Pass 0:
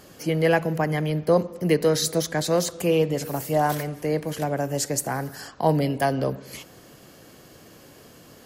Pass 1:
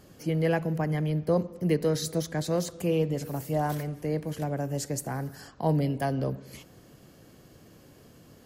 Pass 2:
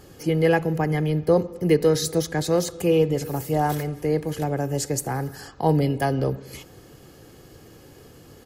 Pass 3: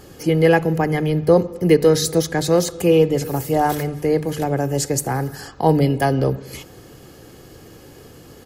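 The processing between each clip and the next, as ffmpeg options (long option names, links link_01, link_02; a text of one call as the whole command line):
ffmpeg -i in.wav -af "lowshelf=frequency=300:gain=9.5,volume=-9dB" out.wav
ffmpeg -i in.wav -af "aecho=1:1:2.4:0.39,volume=6dB" out.wav
ffmpeg -i in.wav -af "bandreject=frequency=50:width_type=h:width=6,bandreject=frequency=100:width_type=h:width=6,bandreject=frequency=150:width_type=h:width=6,volume=5dB" out.wav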